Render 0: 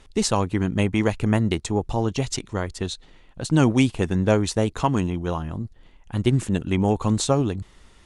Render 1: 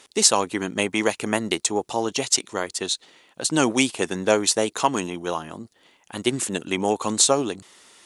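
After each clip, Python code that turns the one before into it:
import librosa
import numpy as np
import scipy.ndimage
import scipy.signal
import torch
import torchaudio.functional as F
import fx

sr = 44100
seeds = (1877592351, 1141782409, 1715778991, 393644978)

y = scipy.signal.sosfilt(scipy.signal.butter(2, 330.0, 'highpass', fs=sr, output='sos'), x)
y = fx.high_shelf(y, sr, hz=4200.0, db=11.5)
y = y * 10.0 ** (2.0 / 20.0)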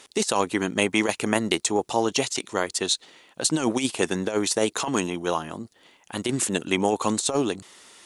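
y = fx.over_compress(x, sr, threshold_db=-21.0, ratio=-0.5)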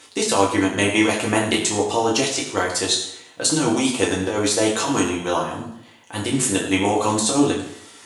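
y = fx.rev_fdn(x, sr, rt60_s=0.75, lf_ratio=1.0, hf_ratio=0.9, size_ms=61.0, drr_db=-3.5)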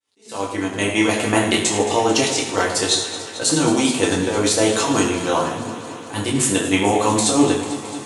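y = fx.fade_in_head(x, sr, length_s=1.29)
y = fx.echo_alternate(y, sr, ms=111, hz=1300.0, feedback_pct=86, wet_db=-12.5)
y = fx.attack_slew(y, sr, db_per_s=180.0)
y = y * 10.0 ** (2.0 / 20.0)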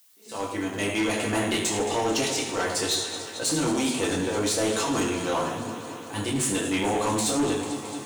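y = fx.dmg_noise_colour(x, sr, seeds[0], colour='blue', level_db=-54.0)
y = 10.0 ** (-15.0 / 20.0) * np.tanh(y / 10.0 ** (-15.0 / 20.0))
y = y * 10.0 ** (-4.5 / 20.0)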